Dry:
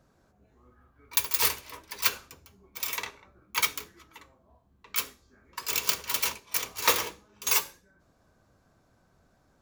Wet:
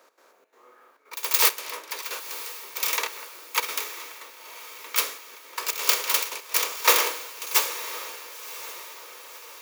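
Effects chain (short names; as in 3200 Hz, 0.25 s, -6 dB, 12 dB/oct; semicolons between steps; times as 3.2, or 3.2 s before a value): per-bin compression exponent 0.6; step gate "x.xxx.xxxxx." 171 bpm -12 dB; HPF 350 Hz 24 dB/oct; diffused feedback echo 1.029 s, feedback 60%, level -9 dB; three-band expander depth 40%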